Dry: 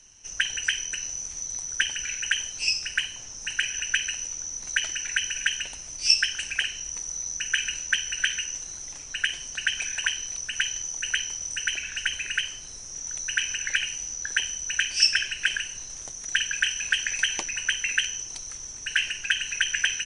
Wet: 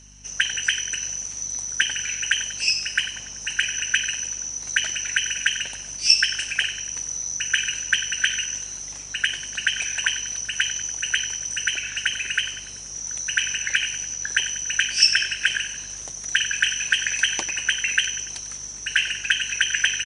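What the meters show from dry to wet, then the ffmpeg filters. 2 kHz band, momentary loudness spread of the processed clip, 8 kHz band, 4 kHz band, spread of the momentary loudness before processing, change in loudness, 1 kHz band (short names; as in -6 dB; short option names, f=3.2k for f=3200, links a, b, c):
+3.5 dB, 9 LU, +4.0 dB, +4.0 dB, 9 LU, +4.0 dB, +4.0 dB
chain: -af "highpass=100,aecho=1:1:96|192|288|384|480:0.211|0.112|0.0594|0.0315|0.0167,aeval=exprs='val(0)+0.00224*(sin(2*PI*50*n/s)+sin(2*PI*2*50*n/s)/2+sin(2*PI*3*50*n/s)/3+sin(2*PI*4*50*n/s)/4+sin(2*PI*5*50*n/s)/5)':c=same,volume=3.5dB"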